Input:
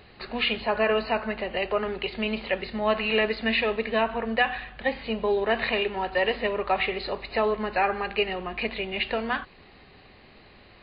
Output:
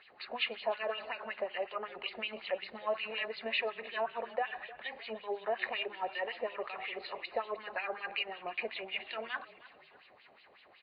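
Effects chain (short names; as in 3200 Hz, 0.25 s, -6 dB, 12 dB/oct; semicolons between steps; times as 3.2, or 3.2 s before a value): compressor 2.5:1, threshold -27 dBFS, peak gain reduction 7 dB; LFO band-pass sine 5.4 Hz 570–3400 Hz; on a send: frequency-shifting echo 0.306 s, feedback 41%, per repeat -34 Hz, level -19 dB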